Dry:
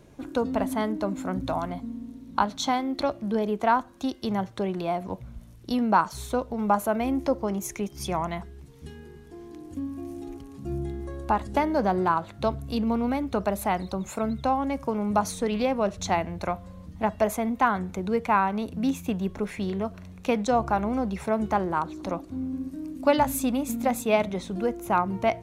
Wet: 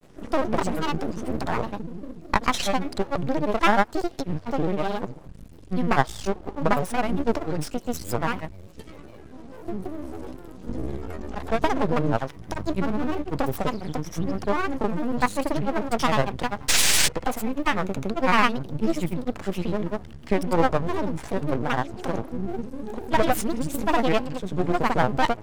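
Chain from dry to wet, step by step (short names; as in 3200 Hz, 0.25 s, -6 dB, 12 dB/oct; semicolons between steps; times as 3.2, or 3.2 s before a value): painted sound noise, 16.75–17.02, 1800–11000 Hz -20 dBFS; half-wave rectifier; grains, pitch spread up and down by 7 st; gain +6.5 dB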